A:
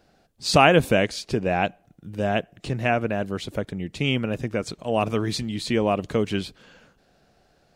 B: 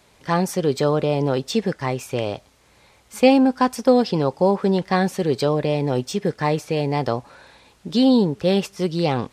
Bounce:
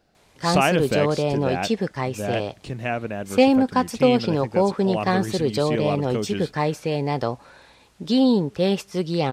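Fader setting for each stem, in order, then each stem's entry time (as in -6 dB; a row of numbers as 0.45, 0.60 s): -4.0, -2.0 dB; 0.00, 0.15 s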